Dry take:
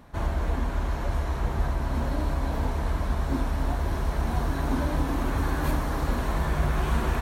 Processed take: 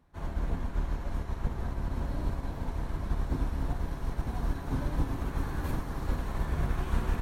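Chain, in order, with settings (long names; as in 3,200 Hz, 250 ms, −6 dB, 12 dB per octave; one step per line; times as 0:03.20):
sub-octave generator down 1 octave, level +2 dB
notch filter 630 Hz, Q 19
expander for the loud parts 1.5 to 1, over −38 dBFS
level −6.5 dB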